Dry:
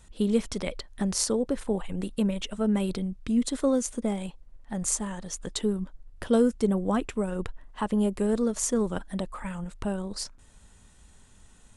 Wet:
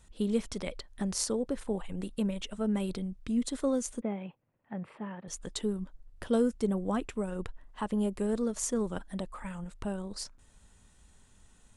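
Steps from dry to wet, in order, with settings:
0:04.01–0:05.28: elliptic band-pass filter 110–2,600 Hz, stop band 40 dB
level −5 dB

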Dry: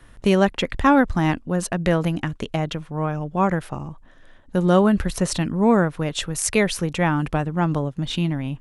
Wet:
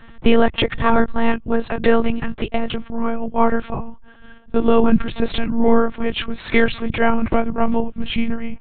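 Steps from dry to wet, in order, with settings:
pitch glide at a constant tempo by −3 semitones starting unshifted
one-pitch LPC vocoder at 8 kHz 230 Hz
boost into a limiter +8 dB
level −1 dB

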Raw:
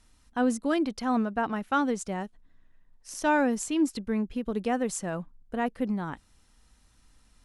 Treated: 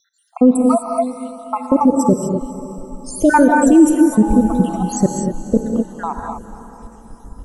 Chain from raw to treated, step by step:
time-frequency cells dropped at random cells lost 81%
drawn EQ curve 440 Hz 0 dB, 2,200 Hz −21 dB, 4,200 Hz −18 dB, 8,800 Hz −10 dB
in parallel at −1 dB: compressor whose output falls as the input rises −36 dBFS, ratio −0.5
0:04.22–0:05.03: on the sum: steady tone 830 Hz −42 dBFS
feedback delay with all-pass diffusion 503 ms, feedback 43%, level −15 dB
reverb whose tail is shaped and stops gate 270 ms rising, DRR 2.5 dB
boost into a limiter +18.5 dB
level −1 dB

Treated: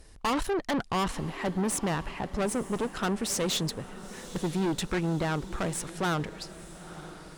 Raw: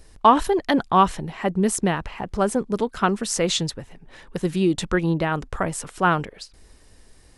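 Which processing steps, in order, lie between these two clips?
tube saturation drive 25 dB, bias 0.55
feedback delay with all-pass diffusion 937 ms, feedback 53%, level −15 dB

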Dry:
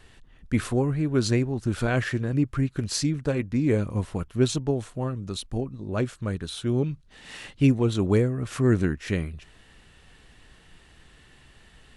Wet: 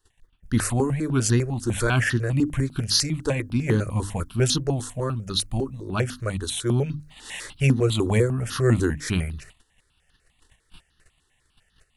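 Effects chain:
mains-hum notches 50/100/150/200/250/300 Hz
noise gate −49 dBFS, range −19 dB
high-shelf EQ 3,400 Hz +10 dB
automatic gain control gain up to 6 dB
step-sequenced phaser 10 Hz 620–2,300 Hz

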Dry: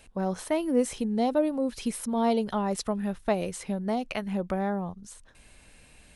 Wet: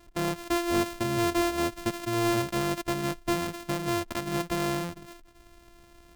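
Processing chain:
samples sorted by size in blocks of 128 samples
gain into a clipping stage and back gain 20.5 dB

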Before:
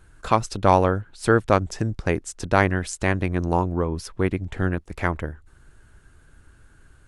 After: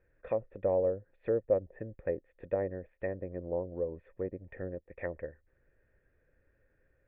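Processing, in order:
treble cut that deepens with the level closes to 720 Hz, closed at −18.5 dBFS
formant resonators in series e

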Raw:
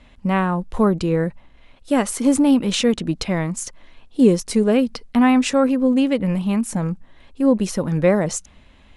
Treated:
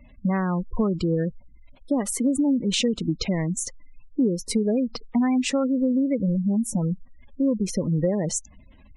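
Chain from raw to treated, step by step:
gate on every frequency bin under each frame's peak −20 dB strong
dynamic equaliser 930 Hz, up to −5 dB, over −31 dBFS, Q 0.88
downward compressor 5 to 1, threshold −19 dBFS, peak gain reduction 9.5 dB

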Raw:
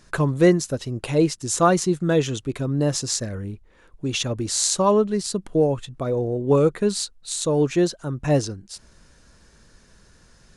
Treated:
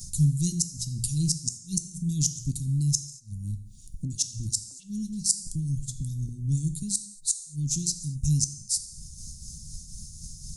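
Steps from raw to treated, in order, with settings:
downward expander −51 dBFS
inverse Chebyshev band-stop filter 510–1,800 Hz, stop band 70 dB
high-shelf EQ 3,500 Hz +5 dB
mains-hum notches 60/120/180 Hz
harmonic and percussive parts rebalanced percussive +8 dB
parametric band 320 Hz +2.5 dB 2.5 octaves
upward compression, threshold −30 dBFS
amplitude tremolo 4 Hz, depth 44%
gate with flip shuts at −13 dBFS, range −34 dB
0:04.05–0:06.29: three-band delay without the direct sound lows, highs, mids 50/660 ms, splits 520/2,200 Hz
reverb whose tail is shaped and stops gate 260 ms falling, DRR 9 dB
level +2.5 dB

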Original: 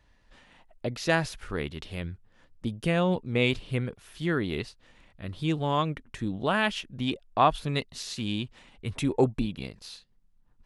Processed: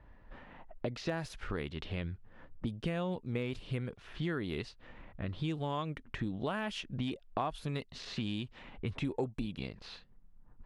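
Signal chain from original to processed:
de-essing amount 95%
low-pass that shuts in the quiet parts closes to 1,400 Hz, open at −25 dBFS
downward compressor 4 to 1, threshold −42 dBFS, peak gain reduction 20.5 dB
level +6.5 dB

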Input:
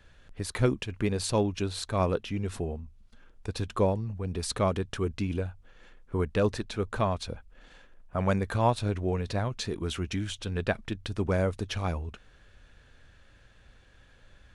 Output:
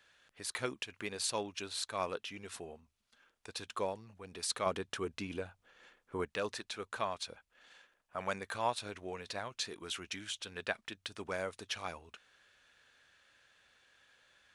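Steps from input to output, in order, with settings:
high-pass filter 1,400 Hz 6 dB per octave, from 0:04.66 630 Hz, from 0:06.26 1,400 Hz
level −1.5 dB

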